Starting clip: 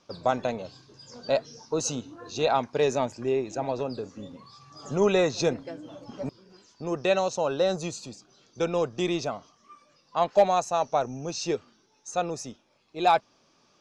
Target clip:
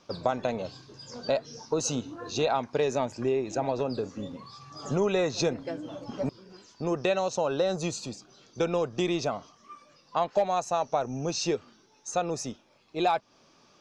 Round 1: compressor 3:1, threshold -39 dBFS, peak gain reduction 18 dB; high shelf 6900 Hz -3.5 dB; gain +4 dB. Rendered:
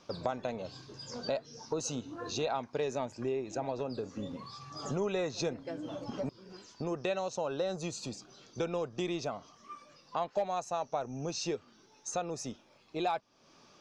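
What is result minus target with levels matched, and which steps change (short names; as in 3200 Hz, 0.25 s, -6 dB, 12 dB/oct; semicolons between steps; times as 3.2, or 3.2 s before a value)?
compressor: peak gain reduction +7 dB
change: compressor 3:1, threshold -28.5 dBFS, peak gain reduction 11 dB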